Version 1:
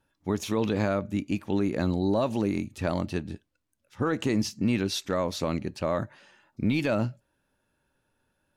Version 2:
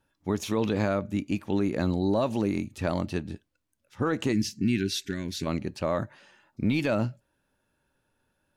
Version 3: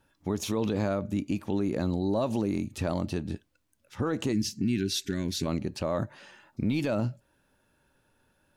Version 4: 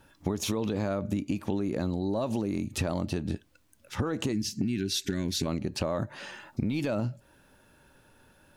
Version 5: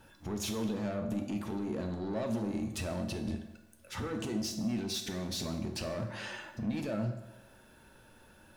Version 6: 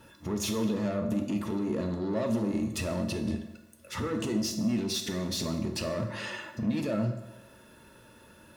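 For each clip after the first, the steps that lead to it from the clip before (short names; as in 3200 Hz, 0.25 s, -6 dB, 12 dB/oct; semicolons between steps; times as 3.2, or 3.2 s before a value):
spectral gain 4.33–5.46, 420–1400 Hz -20 dB
dynamic EQ 2000 Hz, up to -5 dB, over -47 dBFS, Q 0.99; in parallel at -1.5 dB: compressor, threshold -36 dBFS, peak gain reduction 14.5 dB; on the sum: limiter -19.5 dBFS, peak gain reduction 4.5 dB
compressor 10:1, threshold -35 dBFS, peak gain reduction 12.5 dB; gain +9 dB
limiter -25 dBFS, peak gain reduction 8.5 dB; soft clip -32 dBFS, distortion -12 dB; on a send at -4 dB: reverb RT60 1.1 s, pre-delay 5 ms
notch comb 770 Hz; gain +5.5 dB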